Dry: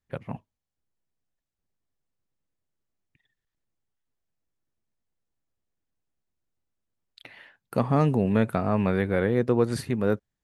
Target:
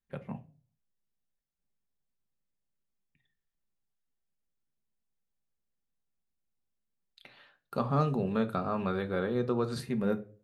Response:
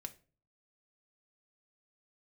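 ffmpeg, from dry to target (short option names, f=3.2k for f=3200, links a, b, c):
-filter_complex "[0:a]asettb=1/sr,asplit=3[a][b][c];[a]atrim=end=7.274[d];[b]atrim=start=7.27:end=9.8,asetpts=PTS-STARTPTS,afade=t=in:d=0.004:c=qsin,afade=t=out:st=2.526:d=0.004:c=qsin,equalizer=f=200:t=o:w=0.33:g=-8,equalizer=f=1.25k:t=o:w=0.33:g=8,equalizer=f=2k:t=o:w=0.33:g=-9,equalizer=f=4k:t=o:w=0.33:g=9,equalizer=f=10k:t=o:w=0.33:g=-8[e];[c]atrim=start=9.796[f];[d][e]acrossfade=d=0.004:c1=hsin:c2=qsin[g];[g][f]acrossfade=d=0.004:c1=qsin:c2=hsin[h];[1:a]atrim=start_sample=2205[i];[h][i]afir=irnorm=-1:irlink=0,volume=-2.5dB"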